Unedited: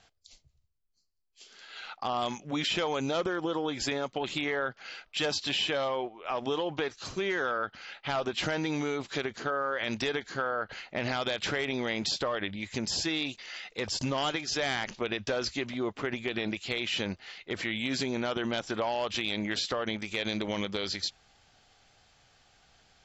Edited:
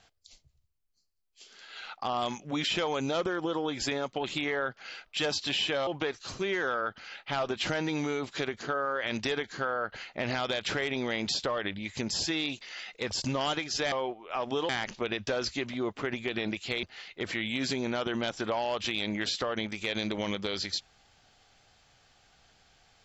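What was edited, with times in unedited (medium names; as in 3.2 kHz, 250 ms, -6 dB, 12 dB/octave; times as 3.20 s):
5.87–6.64 s: move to 14.69 s
16.83–17.13 s: delete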